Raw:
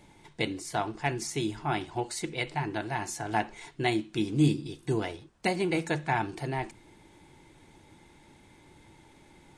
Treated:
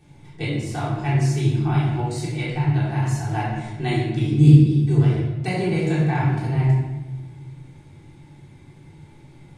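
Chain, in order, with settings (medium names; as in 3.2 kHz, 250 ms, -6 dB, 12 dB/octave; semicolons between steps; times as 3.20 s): peaking EQ 130 Hz +13.5 dB 0.89 oct; simulated room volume 710 m³, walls mixed, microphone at 3.6 m; trim -6 dB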